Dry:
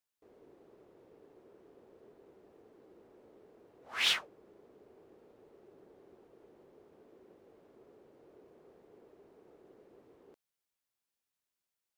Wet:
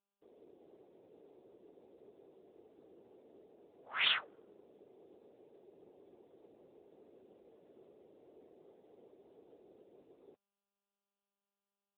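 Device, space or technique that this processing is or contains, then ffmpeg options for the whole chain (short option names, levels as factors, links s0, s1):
mobile call with aggressive noise cancelling: -filter_complex "[0:a]asettb=1/sr,asplit=3[s0][s1][s2];[s0]atrim=end=3.264[s3];[s1]atrim=start=3.26:end=4.66,asetpts=PTS-STARTPTS,afade=t=in:d=0.004:c=qsin,afade=t=out:st=1.396:d=0.004:c=qsin,adynamicequalizer=threshold=0.002:dfrequency=1400:dqfactor=3.6:tfrequency=1400:tqfactor=3.6:attack=5:release=100:ratio=0.375:range=2.5:mode=boostabove:tftype=bell[s4];[s2]atrim=start=4.656[s5];[s3][s4]acrossfade=d=0.004:c1=hsin:c2=qsin[s6];[s6][s5]acrossfade=d=0.004:c1=qsin:c2=hsin,highpass=f=140:p=1,afftdn=nr=15:nf=-66" -ar 8000 -c:a libopencore_amrnb -b:a 10200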